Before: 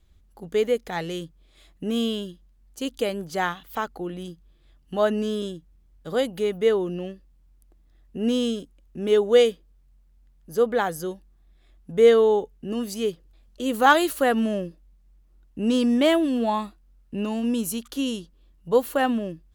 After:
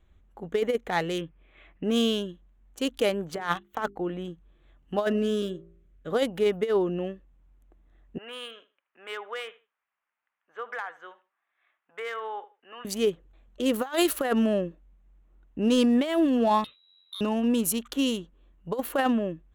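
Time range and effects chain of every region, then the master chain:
1.18–1.84 careless resampling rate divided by 4×, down filtered, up hold + synth low-pass 2500 Hz, resonance Q 2.2
3.35–3.99 gate -41 dBFS, range -24 dB + negative-ratio compressor -30 dBFS, ratio -0.5 + notches 50/100/150/200/250/300/350/400 Hz
5.06–6.11 bell 880 Hz -12.5 dB 0.46 oct + de-hum 56.24 Hz, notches 24
8.18–12.85 Butterworth band-pass 1700 Hz, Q 0.92 + compressor, threshold -32 dBFS + feedback echo 77 ms, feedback 22%, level -17.5 dB
16.64–17.21 compressor, threshold -36 dBFS + inverted band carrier 3900 Hz
whole clip: Wiener smoothing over 9 samples; low shelf 320 Hz -6.5 dB; negative-ratio compressor -24 dBFS, ratio -0.5; gain +2.5 dB

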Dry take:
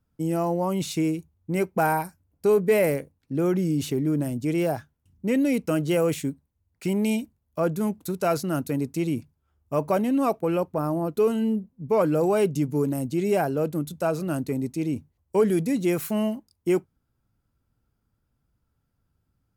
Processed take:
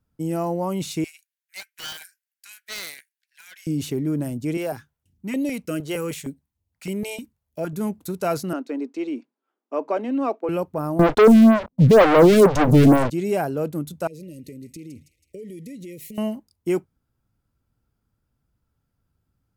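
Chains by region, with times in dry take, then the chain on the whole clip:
1.04–3.67 steep high-pass 1500 Hz 96 dB/oct + Doppler distortion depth 0.87 ms
4.57–7.73 low shelf 180 Hz -6.5 dB + stepped notch 6.5 Hz 220–1500 Hz
8.53–10.49 steep high-pass 240 Hz 48 dB/oct + air absorption 160 m
10.99–13.1 low shelf 400 Hz +10.5 dB + sample leveller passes 5 + photocell phaser 2.1 Hz
14.07–16.18 compressor 8:1, threshold -35 dBFS + brick-wall FIR band-stop 610–1800 Hz + thin delay 0.162 s, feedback 53%, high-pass 1700 Hz, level -10 dB
whole clip: dry

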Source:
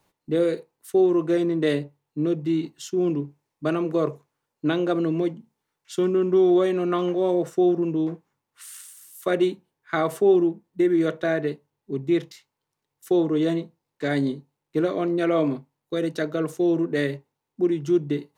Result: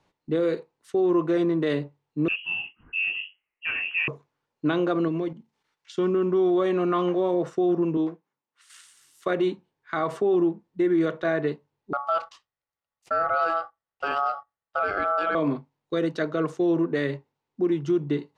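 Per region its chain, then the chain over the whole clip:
2.28–4.08 HPF 220 Hz 6 dB/oct + inverted band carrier 3000 Hz + detuned doubles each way 59 cents
5.08–5.98 level quantiser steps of 9 dB + mismatched tape noise reduction encoder only
7.97–8.7 HPF 200 Hz + upward expander, over -39 dBFS
11.93–15.35 gate -48 dBFS, range -8 dB + ring modulator 990 Hz
whole clip: LPF 5100 Hz 12 dB/oct; dynamic EQ 1100 Hz, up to +6 dB, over -44 dBFS, Q 1.8; limiter -15.5 dBFS

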